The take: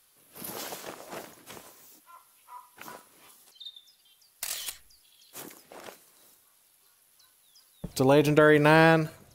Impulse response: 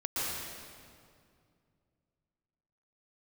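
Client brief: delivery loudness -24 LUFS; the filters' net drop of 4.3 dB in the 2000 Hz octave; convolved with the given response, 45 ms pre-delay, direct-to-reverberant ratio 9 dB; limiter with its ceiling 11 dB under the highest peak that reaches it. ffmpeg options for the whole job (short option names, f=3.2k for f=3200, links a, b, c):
-filter_complex "[0:a]equalizer=f=2k:t=o:g=-6,alimiter=limit=-19.5dB:level=0:latency=1,asplit=2[a][b];[1:a]atrim=start_sample=2205,adelay=45[c];[b][c]afir=irnorm=-1:irlink=0,volume=-16dB[d];[a][d]amix=inputs=2:normalize=0,volume=9dB"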